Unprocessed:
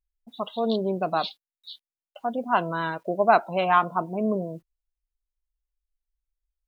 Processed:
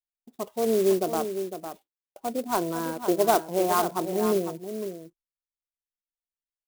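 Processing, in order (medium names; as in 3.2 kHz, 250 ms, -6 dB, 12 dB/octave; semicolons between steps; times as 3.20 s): low-pass 1.5 kHz 12 dB/octave; gate -53 dBFS, range -24 dB; peaking EQ 370 Hz +13.5 dB 0.77 oct; on a send: delay 505 ms -9 dB; on the sum: sampling jitter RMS 0.061 ms; trim -5.5 dB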